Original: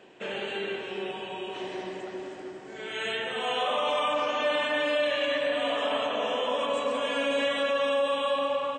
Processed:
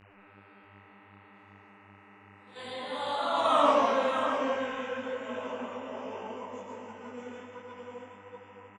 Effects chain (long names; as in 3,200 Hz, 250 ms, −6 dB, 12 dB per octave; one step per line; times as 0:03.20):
source passing by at 0:03.60, 46 m/s, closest 7.9 metres
noise gate −52 dBFS, range −19 dB
graphic EQ with 15 bands 250 Hz +9 dB, 1,000 Hz +7 dB, 2,500 Hz −7 dB, 6,300 Hz +4 dB
in parallel at +2.5 dB: downward compressor, threshold −41 dBFS, peak gain reduction 18.5 dB
on the sum: hum with harmonics 100 Hz, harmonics 29, −56 dBFS −3 dB per octave
single-tap delay 639 ms −8.5 dB
on a send at −3.5 dB: convolution reverb RT60 0.35 s, pre-delay 80 ms
on the sum: micro pitch shift up and down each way 45 cents
level +2.5 dB